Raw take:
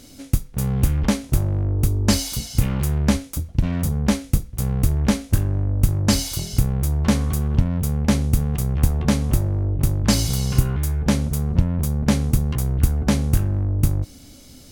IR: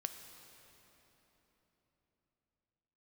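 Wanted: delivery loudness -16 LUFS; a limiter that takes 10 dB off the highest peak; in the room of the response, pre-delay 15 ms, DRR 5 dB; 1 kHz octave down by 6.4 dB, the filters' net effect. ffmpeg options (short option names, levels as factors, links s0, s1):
-filter_complex "[0:a]equalizer=f=1000:t=o:g=-8.5,alimiter=limit=0.224:level=0:latency=1,asplit=2[s0][s1];[1:a]atrim=start_sample=2205,adelay=15[s2];[s1][s2]afir=irnorm=-1:irlink=0,volume=0.668[s3];[s0][s3]amix=inputs=2:normalize=0,volume=1.88"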